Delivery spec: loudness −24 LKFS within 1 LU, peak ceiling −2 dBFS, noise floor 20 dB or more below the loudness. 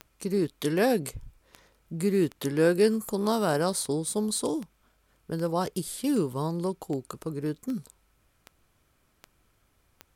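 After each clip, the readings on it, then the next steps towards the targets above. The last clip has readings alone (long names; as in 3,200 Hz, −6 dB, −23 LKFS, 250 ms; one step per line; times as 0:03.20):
number of clicks 14; integrated loudness −28.0 LKFS; sample peak −11.5 dBFS; target loudness −24.0 LKFS
→ click removal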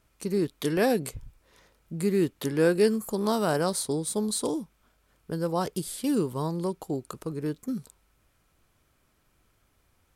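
number of clicks 0; integrated loudness −28.0 LKFS; sample peak −11.5 dBFS; target loudness −24.0 LKFS
→ level +4 dB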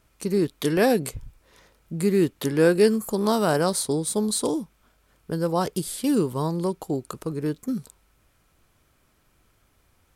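integrated loudness −24.0 LKFS; sample peak −7.5 dBFS; background noise floor −65 dBFS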